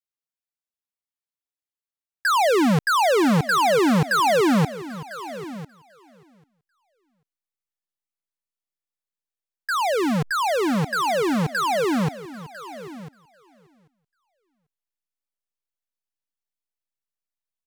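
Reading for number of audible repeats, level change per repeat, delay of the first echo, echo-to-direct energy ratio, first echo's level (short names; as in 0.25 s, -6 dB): 2, no steady repeat, 0.791 s, -15.0 dB, -22.0 dB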